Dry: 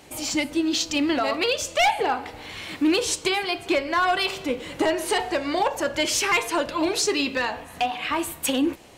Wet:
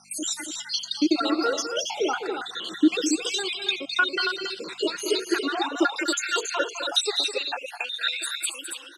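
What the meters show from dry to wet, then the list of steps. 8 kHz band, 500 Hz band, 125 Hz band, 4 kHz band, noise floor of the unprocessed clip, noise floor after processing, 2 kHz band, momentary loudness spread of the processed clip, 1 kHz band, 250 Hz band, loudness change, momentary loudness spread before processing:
−1.5 dB, −3.5 dB, below −15 dB, +1.0 dB, −43 dBFS, −43 dBFS, −2.0 dB, 8 LU, −6.0 dB, −1.5 dB, −2.0 dB, 6 LU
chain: time-frequency cells dropped at random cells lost 72%
meter weighting curve ITU-R 468
noise reduction from a noise print of the clip's start 7 dB
parametric band 2,200 Hz −6.5 dB 0.38 octaves
downward compressor 2.5 to 1, threshold −34 dBFS, peak gain reduction 13 dB
hollow resonant body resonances 340/1,400/3,700 Hz, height 16 dB, ringing for 25 ms
mains hum 50 Hz, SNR 33 dB
high-pass filter sweep 180 Hz → 1,100 Hz, 0:04.94–0:08.46
loudspeakers that aren't time-aligned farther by 71 metres −10 dB, 95 metres −7 dB
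level +1.5 dB

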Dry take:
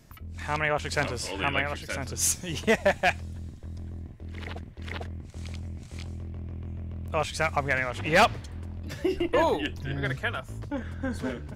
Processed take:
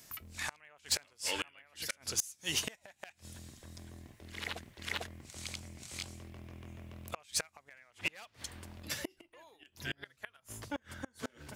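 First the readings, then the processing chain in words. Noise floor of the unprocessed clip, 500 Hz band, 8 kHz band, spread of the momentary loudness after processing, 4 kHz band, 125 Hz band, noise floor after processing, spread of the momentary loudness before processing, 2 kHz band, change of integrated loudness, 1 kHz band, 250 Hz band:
−45 dBFS, −20.5 dB, −5.0 dB, 17 LU, −3.5 dB, −16.5 dB, −73 dBFS, 16 LU, −13.0 dB, −11.0 dB, −19.5 dB, −15.5 dB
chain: gate with flip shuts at −20 dBFS, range −32 dB
spectral tilt +3.5 dB per octave
hard clipping −22 dBFS, distortion −14 dB
level −1.5 dB

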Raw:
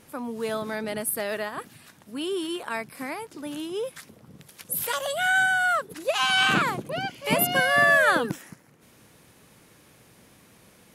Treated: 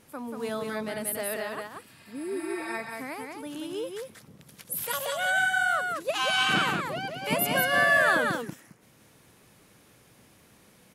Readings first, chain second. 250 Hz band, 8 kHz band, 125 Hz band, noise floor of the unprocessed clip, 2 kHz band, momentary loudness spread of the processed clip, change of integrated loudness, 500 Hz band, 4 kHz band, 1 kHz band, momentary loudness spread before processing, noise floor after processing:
−2.5 dB, −2.5 dB, −2.5 dB, −56 dBFS, −2.5 dB, 16 LU, −2.5 dB, −2.5 dB, −2.5 dB, −2.5 dB, 16 LU, −59 dBFS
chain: healed spectral selection 0:01.88–0:02.71, 670–7,700 Hz both
single-tap delay 185 ms −4 dB
level −4 dB

